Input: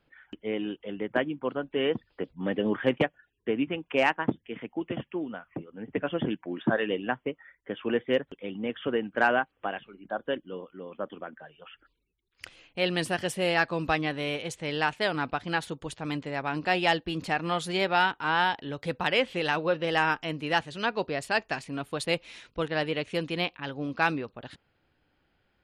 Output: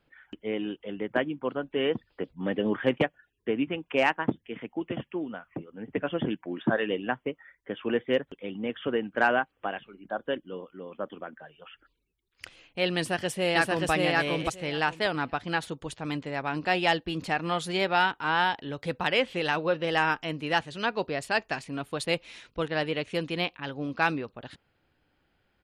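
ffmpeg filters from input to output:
-filter_complex "[0:a]asplit=2[a][b];[b]afade=t=in:st=12.97:d=0.01,afade=t=out:st=13.91:d=0.01,aecho=0:1:580|1160|1740:0.891251|0.133688|0.0200531[c];[a][c]amix=inputs=2:normalize=0"

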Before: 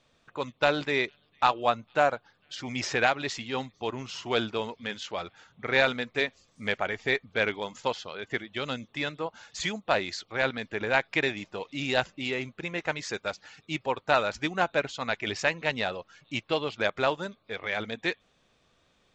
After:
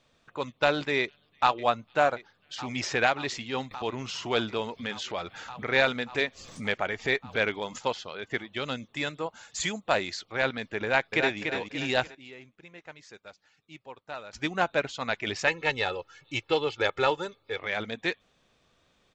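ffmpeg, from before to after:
-filter_complex "[0:a]asplit=2[a][b];[b]afade=t=in:st=1:d=0.01,afade=t=out:st=1.6:d=0.01,aecho=0:1:580|1160|1740|2320|2900|3480|4060|4640|5220|5800|6380|6960:0.158489|0.126791|0.101433|0.0811465|0.0649172|0.0519338|0.041547|0.0332376|0.0265901|0.0212721|0.0170177|0.0136141[c];[a][c]amix=inputs=2:normalize=0,asettb=1/sr,asplit=3[d][e][f];[d]atrim=end=3.714[g];[e]atrim=start=3.71:end=7.79,asetpts=PTS-STARTPTS,afade=t=in:d=0.004:c=qsin,afade=t=out:st=4.076:d=0.004:c=qsin,acompressor=mode=upward:threshold=-29dB:ratio=2.5:attack=3.2:release=140:knee=2.83:detection=peak[h];[f]atrim=start=7.786[i];[g][h]acrossfade=d=0.004:c1=hsin:c2=qsin[j];[j][i]acrossfade=d=0.004:c1=qsin:c2=hsin,asettb=1/sr,asplit=3[k][l][m];[k]atrim=end=8.944[n];[l]atrim=start=8.94:end=10.08,asetpts=PTS-STARTPTS,afade=t=in:d=0.004:c=qsin,afade=t=out:st=1.136:d=0.004:c=qsin,equalizer=f=7.3k:t=o:w=0.28:g=9[o];[m]atrim=start=10.076[p];[n][o]acrossfade=d=0.004:c1=hsin:c2=qsin[q];[q][p]acrossfade=d=0.004:c1=qsin:c2=hsin,asplit=2[r][s];[s]afade=t=in:st=10.83:d=0.01,afade=t=out:st=11.39:d=0.01,aecho=0:1:290|580|870|1160|1450:0.530884|0.212354|0.0849415|0.0339766|0.0135906[t];[r][t]amix=inputs=2:normalize=0,asettb=1/sr,asplit=3[u][v][w];[u]atrim=end=15.474[x];[v]atrim=start=15.47:end=17.59,asetpts=PTS-STARTPTS,afade=t=in:d=0.004:c=qsin,afade=t=out:st=2.116:d=0.004:c=qsin,aecho=1:1:2.3:0.68,atrim=end_sample=93492[y];[w]atrim=start=17.586[z];[x][y]acrossfade=d=0.004:c1=hsin:c2=qsin[aa];[aa][z]acrossfade=d=0.004:c1=qsin:c2=hsin,asplit=3[ab][ac][ad];[ab]atrim=end=12.15,asetpts=PTS-STARTPTS,afade=t=out:st=11.93:d=0.22:c=log:silence=0.16788[ae];[ac]atrim=start=12.15:end=14.33,asetpts=PTS-STARTPTS,volume=-15.5dB[af];[ad]atrim=start=14.33,asetpts=PTS-STARTPTS,afade=t=in:d=0.22:c=log:silence=0.16788[ag];[ae][af][ag]concat=n=3:v=0:a=1"

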